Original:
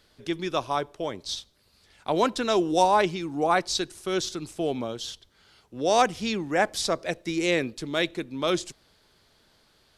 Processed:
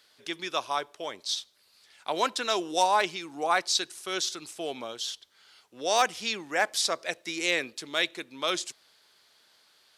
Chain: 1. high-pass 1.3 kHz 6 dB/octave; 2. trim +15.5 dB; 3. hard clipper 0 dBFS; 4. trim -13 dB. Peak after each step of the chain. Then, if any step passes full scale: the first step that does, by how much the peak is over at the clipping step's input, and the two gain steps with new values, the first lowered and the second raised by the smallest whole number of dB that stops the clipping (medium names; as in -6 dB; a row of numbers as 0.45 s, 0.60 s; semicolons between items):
-11.0 dBFS, +4.5 dBFS, 0.0 dBFS, -13.0 dBFS; step 2, 4.5 dB; step 2 +10.5 dB, step 4 -8 dB